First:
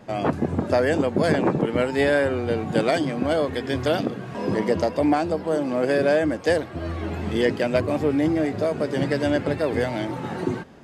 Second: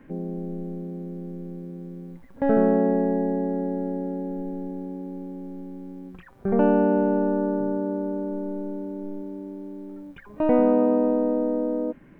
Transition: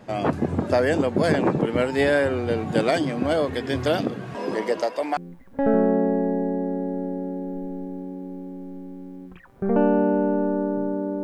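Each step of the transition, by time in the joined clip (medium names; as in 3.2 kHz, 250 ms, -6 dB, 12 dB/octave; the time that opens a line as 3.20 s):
first
4.35–5.17 s: high-pass 250 Hz -> 670 Hz
5.17 s: go over to second from 2.00 s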